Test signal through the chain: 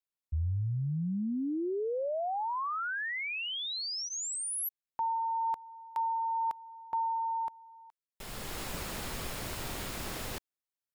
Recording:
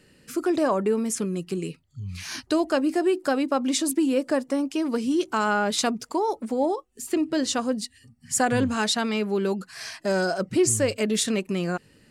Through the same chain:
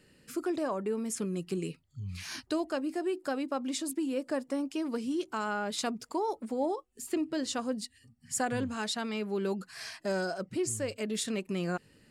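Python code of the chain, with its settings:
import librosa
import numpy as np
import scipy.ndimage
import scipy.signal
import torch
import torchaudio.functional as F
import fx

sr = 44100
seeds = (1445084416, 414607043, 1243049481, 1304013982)

y = fx.notch(x, sr, hz=6000.0, q=20.0)
y = fx.rider(y, sr, range_db=4, speed_s=0.5)
y = y * librosa.db_to_amplitude(-8.5)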